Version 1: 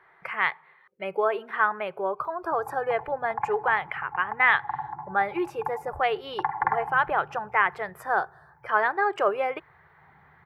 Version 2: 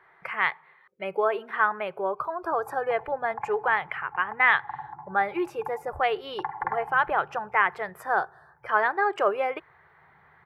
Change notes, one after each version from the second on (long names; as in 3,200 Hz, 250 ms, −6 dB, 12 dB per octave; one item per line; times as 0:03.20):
background −5.0 dB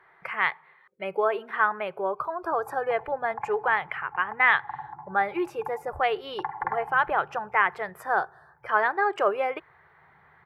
nothing changed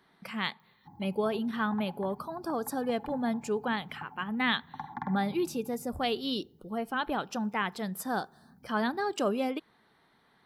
background: entry −1.65 s
master: remove drawn EQ curve 140 Hz 0 dB, 240 Hz −22 dB, 360 Hz +3 dB, 1,100 Hz +10 dB, 2,100 Hz +11 dB, 3,900 Hz −12 dB